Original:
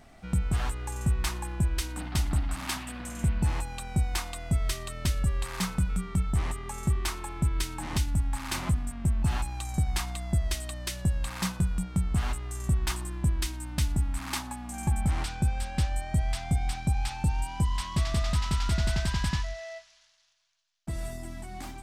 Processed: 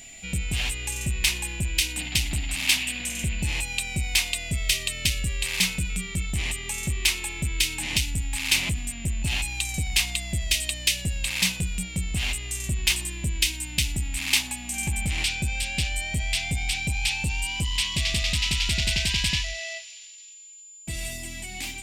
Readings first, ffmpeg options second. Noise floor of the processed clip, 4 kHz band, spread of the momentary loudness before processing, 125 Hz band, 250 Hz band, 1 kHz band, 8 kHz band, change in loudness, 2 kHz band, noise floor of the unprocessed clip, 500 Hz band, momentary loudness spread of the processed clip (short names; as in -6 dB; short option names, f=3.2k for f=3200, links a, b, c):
-44 dBFS, +14.0 dB, 6 LU, -2.0 dB, -2.0 dB, -5.0 dB, +11.0 dB, +5.0 dB, +12.0 dB, -55 dBFS, -2.0 dB, 8 LU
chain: -af "asoftclip=type=tanh:threshold=-20.5dB,highshelf=f=1.8k:t=q:w=3:g=11.5,aeval=exprs='val(0)+0.00631*sin(2*PI*7100*n/s)':c=same"